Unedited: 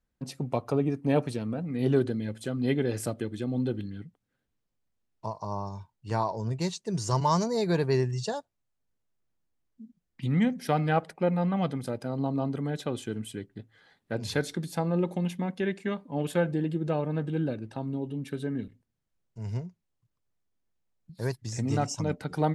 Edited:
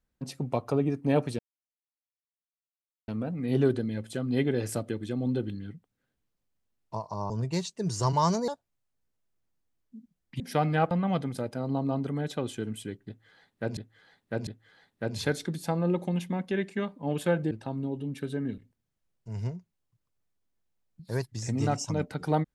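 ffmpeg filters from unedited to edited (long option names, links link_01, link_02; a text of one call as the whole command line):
ffmpeg -i in.wav -filter_complex "[0:a]asplit=9[link_01][link_02][link_03][link_04][link_05][link_06][link_07][link_08][link_09];[link_01]atrim=end=1.39,asetpts=PTS-STARTPTS,afade=type=out:start_time=1.386:duration=0.004:curve=hsin,apad=pad_dur=1.69[link_10];[link_02]atrim=start=1.39:end=5.612,asetpts=PTS-STARTPTS,afade=type=in:duration=0.004:curve=hsin[link_11];[link_03]atrim=start=6.378:end=7.562[link_12];[link_04]atrim=start=8.338:end=10.262[link_13];[link_05]atrim=start=10.538:end=11.052[link_14];[link_06]atrim=start=11.398:end=14.262[link_15];[link_07]atrim=start=13.558:end=14.262[link_16];[link_08]atrim=start=13.558:end=16.602[link_17];[link_09]atrim=start=17.608[link_18];[link_10][link_11]concat=n=2:v=0:a=1[link_19];[link_19][link_12]acrossfade=duration=0.004:curve1=hsin:curve2=hsin[link_20];[link_20][link_13]acrossfade=duration=0.004:curve1=hsin:curve2=hsin[link_21];[link_21][link_14]acrossfade=duration=0.004:curve1=hsin:curve2=hsin[link_22];[link_22][link_15]acrossfade=duration=0.004:curve1=hsin:curve2=hsin[link_23];[link_23][link_16]acrossfade=duration=0.004:curve1=hsin:curve2=hsin[link_24];[link_24][link_17]acrossfade=duration=0.004:curve1=hsin:curve2=hsin[link_25];[link_25][link_18]acrossfade=duration=0.004:curve1=hsin:curve2=hsin" out.wav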